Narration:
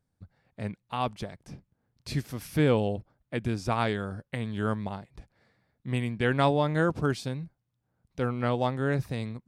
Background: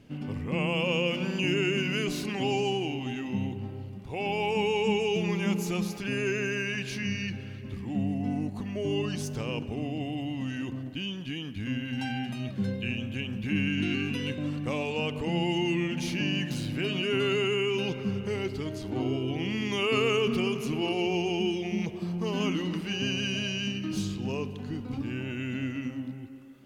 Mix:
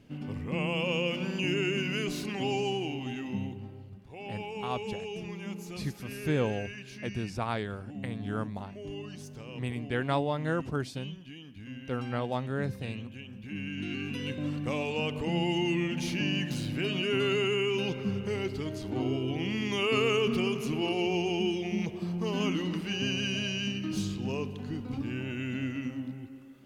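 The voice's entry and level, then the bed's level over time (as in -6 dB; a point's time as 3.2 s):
3.70 s, -5.0 dB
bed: 3.3 s -2.5 dB
4.1 s -11 dB
13.47 s -11 dB
14.46 s -1 dB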